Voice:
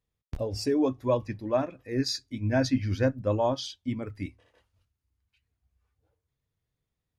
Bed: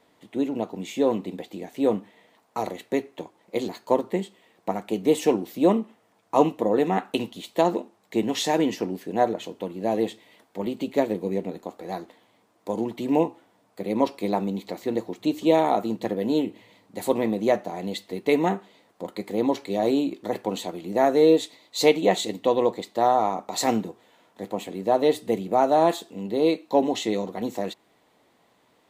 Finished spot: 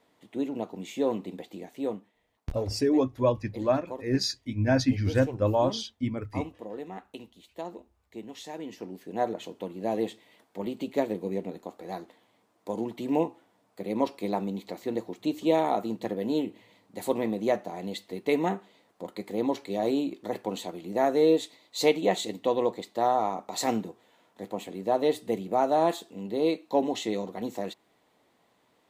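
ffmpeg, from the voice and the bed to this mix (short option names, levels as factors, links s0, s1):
-filter_complex "[0:a]adelay=2150,volume=1.19[s0];[1:a]volume=2.37,afade=t=out:st=1.59:d=0.54:silence=0.251189,afade=t=in:st=8.61:d=0.84:silence=0.237137[s1];[s0][s1]amix=inputs=2:normalize=0"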